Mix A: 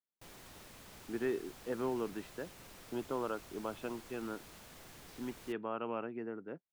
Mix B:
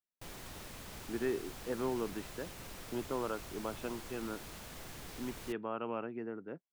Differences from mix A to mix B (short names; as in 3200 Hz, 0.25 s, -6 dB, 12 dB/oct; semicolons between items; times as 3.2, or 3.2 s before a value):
background +5.5 dB; master: add low shelf 94 Hz +5.5 dB